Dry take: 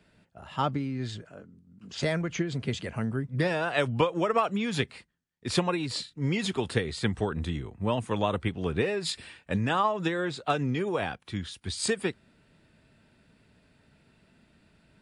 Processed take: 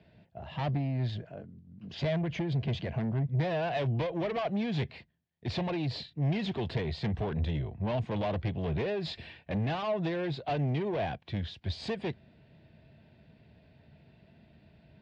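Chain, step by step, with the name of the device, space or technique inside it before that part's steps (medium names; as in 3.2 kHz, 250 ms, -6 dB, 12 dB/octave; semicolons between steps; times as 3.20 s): guitar amplifier (valve stage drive 31 dB, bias 0.25; tone controls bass +13 dB, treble -1 dB; cabinet simulation 94–4400 Hz, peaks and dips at 110 Hz -5 dB, 180 Hz -6 dB, 260 Hz -6 dB, 670 Hz +8 dB, 1.3 kHz -10 dB)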